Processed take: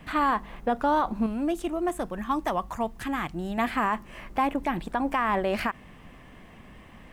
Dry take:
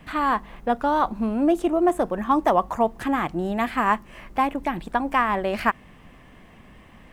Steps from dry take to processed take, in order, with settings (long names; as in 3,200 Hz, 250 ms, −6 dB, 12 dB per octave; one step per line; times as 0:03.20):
0:01.26–0:03.58: parametric band 530 Hz −9.5 dB 2.8 octaves
brickwall limiter −16 dBFS, peak gain reduction 10.5 dB